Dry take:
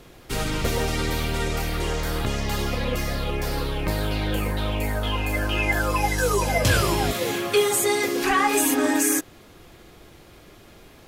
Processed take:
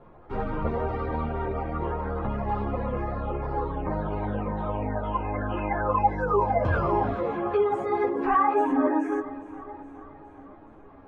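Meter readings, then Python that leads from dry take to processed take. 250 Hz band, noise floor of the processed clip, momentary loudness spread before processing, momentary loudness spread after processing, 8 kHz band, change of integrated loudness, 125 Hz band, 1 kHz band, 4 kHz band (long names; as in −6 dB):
−2.5 dB, −49 dBFS, 7 LU, 13 LU, below −40 dB, −3.5 dB, −4.5 dB, +1.5 dB, below −25 dB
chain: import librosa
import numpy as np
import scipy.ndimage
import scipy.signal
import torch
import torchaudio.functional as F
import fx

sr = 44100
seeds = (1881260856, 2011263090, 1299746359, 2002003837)

p1 = fx.hum_notches(x, sr, base_hz=60, count=8)
p2 = fx.spec_gate(p1, sr, threshold_db=-25, keep='strong')
p3 = fx.lowpass_res(p2, sr, hz=1000.0, q=1.9)
p4 = p3 + fx.echo_feedback(p3, sr, ms=416, feedback_pct=60, wet_db=-16.5, dry=0)
y = fx.ensemble(p4, sr)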